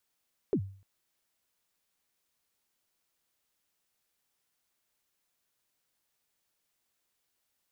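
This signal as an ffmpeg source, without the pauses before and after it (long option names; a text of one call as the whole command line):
ffmpeg -f lavfi -i "aevalsrc='0.0841*pow(10,-3*t/0.46)*sin(2*PI*(460*0.074/log(97/460)*(exp(log(97/460)*min(t,0.074)/0.074)-1)+97*max(t-0.074,0)))':duration=0.3:sample_rate=44100" out.wav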